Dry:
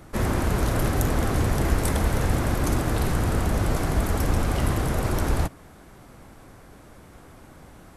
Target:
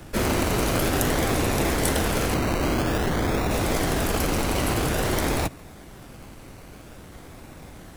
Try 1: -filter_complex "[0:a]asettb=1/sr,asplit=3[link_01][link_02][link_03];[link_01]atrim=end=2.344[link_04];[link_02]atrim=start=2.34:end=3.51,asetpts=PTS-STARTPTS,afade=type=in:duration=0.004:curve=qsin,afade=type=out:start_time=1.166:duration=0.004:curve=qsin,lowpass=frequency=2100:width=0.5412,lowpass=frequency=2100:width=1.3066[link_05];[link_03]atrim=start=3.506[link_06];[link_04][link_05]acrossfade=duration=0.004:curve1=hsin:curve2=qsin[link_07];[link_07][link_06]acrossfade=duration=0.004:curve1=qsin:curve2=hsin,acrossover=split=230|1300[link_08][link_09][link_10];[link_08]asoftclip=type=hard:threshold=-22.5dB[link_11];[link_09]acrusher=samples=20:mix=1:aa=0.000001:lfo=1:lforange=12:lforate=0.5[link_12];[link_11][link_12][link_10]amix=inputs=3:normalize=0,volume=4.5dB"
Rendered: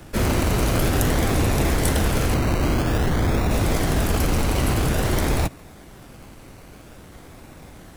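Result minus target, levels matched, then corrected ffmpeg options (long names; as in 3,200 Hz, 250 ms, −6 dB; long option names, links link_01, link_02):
hard clipping: distortion −5 dB
-filter_complex "[0:a]asettb=1/sr,asplit=3[link_01][link_02][link_03];[link_01]atrim=end=2.344[link_04];[link_02]atrim=start=2.34:end=3.51,asetpts=PTS-STARTPTS,afade=type=in:duration=0.004:curve=qsin,afade=type=out:start_time=1.166:duration=0.004:curve=qsin,lowpass=frequency=2100:width=0.5412,lowpass=frequency=2100:width=1.3066[link_05];[link_03]atrim=start=3.506[link_06];[link_04][link_05]acrossfade=duration=0.004:curve1=hsin:curve2=qsin[link_07];[link_07][link_06]acrossfade=duration=0.004:curve1=qsin:curve2=hsin,acrossover=split=230|1300[link_08][link_09][link_10];[link_08]asoftclip=type=hard:threshold=-31dB[link_11];[link_09]acrusher=samples=20:mix=1:aa=0.000001:lfo=1:lforange=12:lforate=0.5[link_12];[link_11][link_12][link_10]amix=inputs=3:normalize=0,volume=4.5dB"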